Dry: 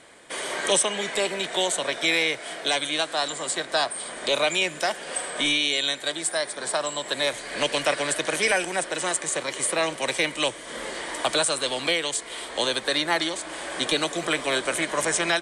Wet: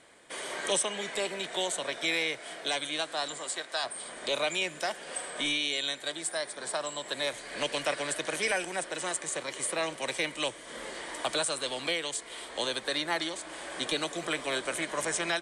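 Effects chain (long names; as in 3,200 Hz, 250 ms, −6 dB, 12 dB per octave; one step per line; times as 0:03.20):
0:03.38–0:03.83: high-pass filter 270 Hz → 1,000 Hz 6 dB per octave
level −7 dB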